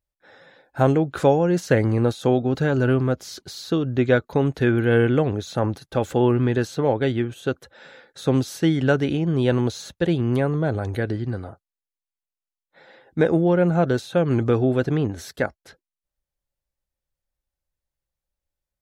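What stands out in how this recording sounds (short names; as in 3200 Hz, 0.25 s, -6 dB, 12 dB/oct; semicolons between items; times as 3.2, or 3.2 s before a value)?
noise floor -90 dBFS; spectral tilt -6.0 dB/oct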